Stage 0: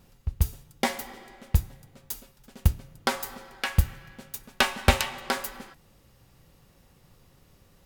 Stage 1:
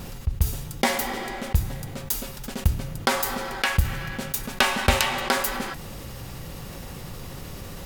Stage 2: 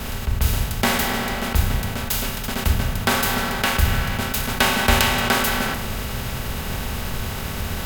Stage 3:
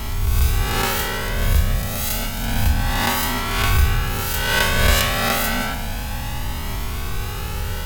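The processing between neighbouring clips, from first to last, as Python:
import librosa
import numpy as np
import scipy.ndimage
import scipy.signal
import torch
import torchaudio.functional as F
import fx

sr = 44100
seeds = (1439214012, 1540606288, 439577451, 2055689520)

y1 = fx.env_flatten(x, sr, amount_pct=50)
y1 = y1 * librosa.db_to_amplitude(-1.0)
y2 = fx.bin_compress(y1, sr, power=0.4)
y2 = fx.room_shoebox(y2, sr, seeds[0], volume_m3=2700.0, walls='furnished', distance_m=1.5)
y2 = fx.band_widen(y2, sr, depth_pct=70)
y2 = y2 * librosa.db_to_amplitude(-3.5)
y3 = fx.spec_swells(y2, sr, rise_s=1.38)
y3 = y3 + 10.0 ** (-40.0 / 20.0) * np.sin(2.0 * np.pi * 840.0 * np.arange(len(y3)) / sr)
y3 = fx.comb_cascade(y3, sr, direction='rising', hz=0.3)
y3 = y3 * librosa.db_to_amplitude(1.0)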